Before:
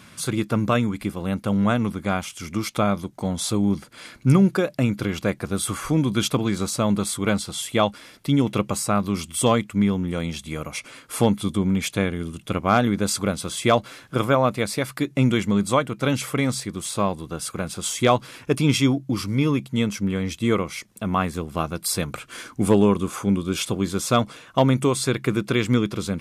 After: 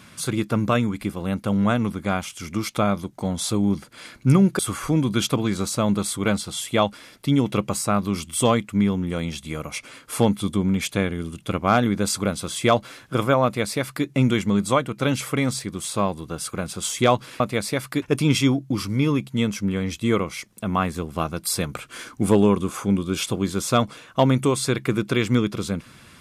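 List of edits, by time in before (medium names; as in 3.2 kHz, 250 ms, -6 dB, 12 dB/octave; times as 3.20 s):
4.59–5.60 s: delete
14.45–15.07 s: copy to 18.41 s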